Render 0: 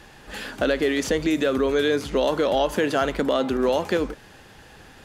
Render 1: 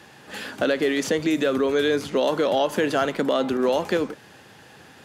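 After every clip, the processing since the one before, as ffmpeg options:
-af "highpass=f=100:w=0.5412,highpass=f=100:w=1.3066"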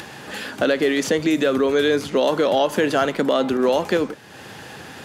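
-af "acompressor=mode=upward:threshold=-32dB:ratio=2.5,volume=3dB"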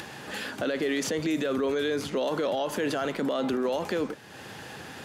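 -af "alimiter=limit=-16dB:level=0:latency=1:release=23,volume=-4dB"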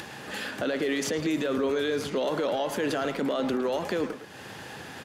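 -filter_complex "[0:a]asplit=2[a][b];[b]adelay=110,highpass=300,lowpass=3.4k,asoftclip=type=hard:threshold=-29dB,volume=-7dB[c];[a][c]amix=inputs=2:normalize=0"

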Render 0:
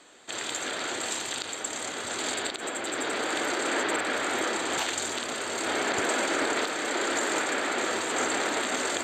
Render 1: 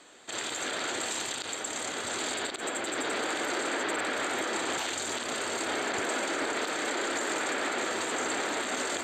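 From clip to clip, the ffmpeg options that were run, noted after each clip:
-af "alimiter=limit=-22dB:level=0:latency=1:release=36"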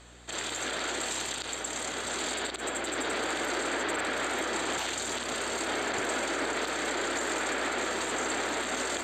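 -af "aeval=exprs='val(0)+0.002*(sin(2*PI*60*n/s)+sin(2*PI*2*60*n/s)/2+sin(2*PI*3*60*n/s)/3+sin(2*PI*4*60*n/s)/4+sin(2*PI*5*60*n/s)/5)':c=same"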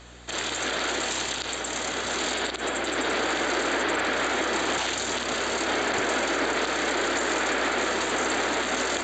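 -af "aresample=16000,aresample=44100,volume=5.5dB"

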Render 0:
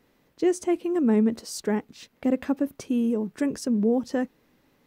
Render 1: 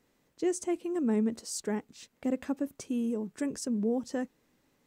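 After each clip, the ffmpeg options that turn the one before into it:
-af "equalizer=f=7.6k:t=o:w=0.81:g=8.5,volume=-7dB"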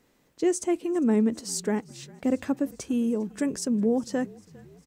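-filter_complex "[0:a]asplit=5[a][b][c][d][e];[b]adelay=402,afreqshift=-39,volume=-23dB[f];[c]adelay=804,afreqshift=-78,volume=-27.9dB[g];[d]adelay=1206,afreqshift=-117,volume=-32.8dB[h];[e]adelay=1608,afreqshift=-156,volume=-37.6dB[i];[a][f][g][h][i]amix=inputs=5:normalize=0,volume=5.5dB"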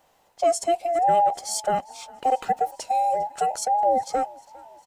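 -af "afftfilt=real='real(if(between(b,1,1008),(2*floor((b-1)/48)+1)*48-b,b),0)':imag='imag(if(between(b,1,1008),(2*floor((b-1)/48)+1)*48-b,b),0)*if(between(b,1,1008),-1,1)':win_size=2048:overlap=0.75,volume=3dB"

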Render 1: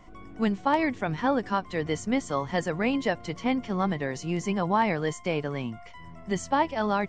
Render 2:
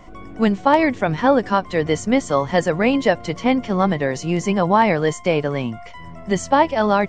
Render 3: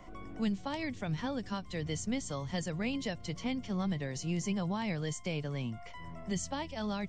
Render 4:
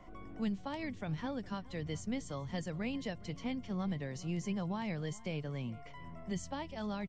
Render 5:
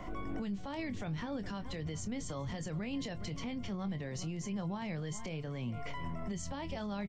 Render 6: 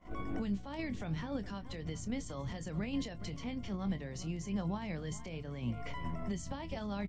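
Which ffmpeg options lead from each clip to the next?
-af "equalizer=f=560:t=o:w=0.55:g=4,volume=8dB"
-filter_complex "[0:a]acrossover=split=190|3000[a][b][c];[b]acompressor=threshold=-38dB:ratio=2.5[d];[a][d][c]amix=inputs=3:normalize=0,volume=-8dB"
-filter_complex "[0:a]highshelf=f=4.3k:g=-8,asplit=2[a][b];[b]adelay=414,volume=-20dB,highshelf=f=4k:g=-9.32[c];[a][c]amix=inputs=2:normalize=0,volume=-3dB"
-filter_complex "[0:a]acompressor=threshold=-42dB:ratio=6,alimiter=level_in=19dB:limit=-24dB:level=0:latency=1:release=30,volume=-19dB,asplit=2[a][b];[b]adelay=25,volume=-12.5dB[c];[a][c]amix=inputs=2:normalize=0,volume=11dB"
-af "aeval=exprs='val(0)+0.00447*(sin(2*PI*60*n/s)+sin(2*PI*2*60*n/s)/2+sin(2*PI*3*60*n/s)/3+sin(2*PI*4*60*n/s)/4+sin(2*PI*5*60*n/s)/5)':c=same,agate=range=-33dB:threshold=-31dB:ratio=3:detection=peak,bandreject=f=50:t=h:w=6,bandreject=f=100:t=h:w=6,bandreject=f=150:t=h:w=6,volume=7dB"

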